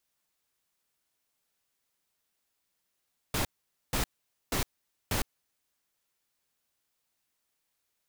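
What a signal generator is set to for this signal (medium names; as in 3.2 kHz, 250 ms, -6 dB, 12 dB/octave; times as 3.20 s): noise bursts pink, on 0.11 s, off 0.48 s, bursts 4, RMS -29 dBFS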